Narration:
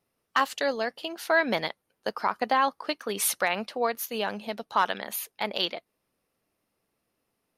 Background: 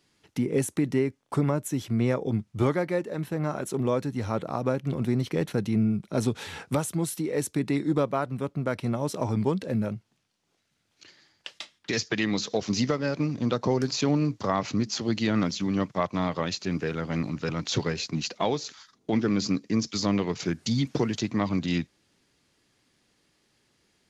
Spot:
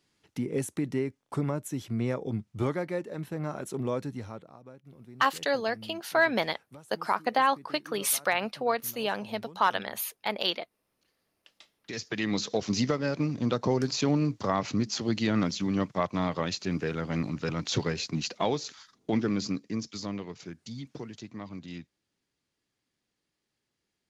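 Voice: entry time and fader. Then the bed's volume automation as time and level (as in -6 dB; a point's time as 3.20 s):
4.85 s, -0.5 dB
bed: 4.12 s -5 dB
4.60 s -23 dB
11.24 s -23 dB
12.34 s -1.5 dB
19.09 s -1.5 dB
20.59 s -14.5 dB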